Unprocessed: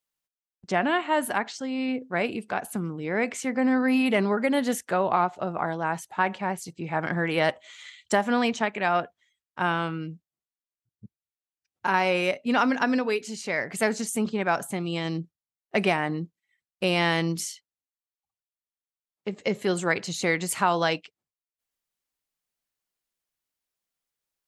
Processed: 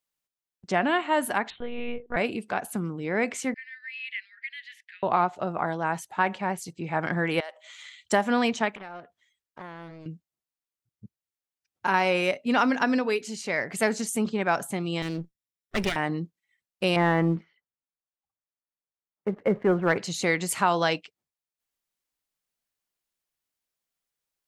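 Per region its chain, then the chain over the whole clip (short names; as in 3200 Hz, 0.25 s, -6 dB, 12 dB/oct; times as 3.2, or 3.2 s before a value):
1.5–2.17 doubler 25 ms -8 dB + monotone LPC vocoder at 8 kHz 240 Hz
3.54–5.03 steep high-pass 1800 Hz 72 dB/oct + air absorption 390 m
7.4–7.97 HPF 470 Hz 24 dB/oct + compressor 3:1, threshold -40 dBFS
8.75–10.06 compressor 2.5:1, threshold -46 dBFS + Doppler distortion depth 0.68 ms
15.02–15.96 minimum comb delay 0.54 ms + bell 990 Hz -3.5 dB 1.5 oct
16.96–19.98 inverse Chebyshev low-pass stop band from 7200 Hz, stop band 70 dB + sample leveller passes 1
whole clip: dry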